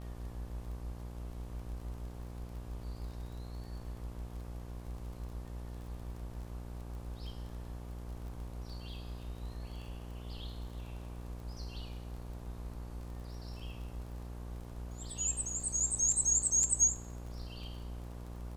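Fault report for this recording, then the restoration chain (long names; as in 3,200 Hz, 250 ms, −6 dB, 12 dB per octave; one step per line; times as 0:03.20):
mains buzz 60 Hz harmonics 20 −44 dBFS
surface crackle 27 per second −45 dBFS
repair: click removal
hum removal 60 Hz, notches 20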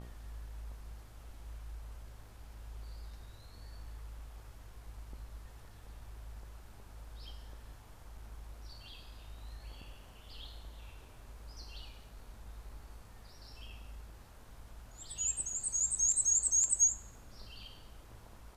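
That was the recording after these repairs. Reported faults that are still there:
none of them is left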